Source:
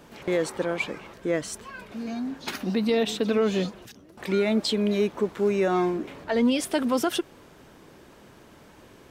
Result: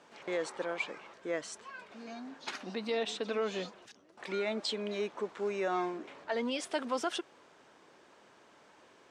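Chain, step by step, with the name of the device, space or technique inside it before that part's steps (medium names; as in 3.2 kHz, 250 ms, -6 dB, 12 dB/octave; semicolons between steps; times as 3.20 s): filter by subtraction (in parallel: low-pass 840 Hz 12 dB/octave + polarity flip); on the sum: low-pass 8.3 kHz 24 dB/octave; trim -7.5 dB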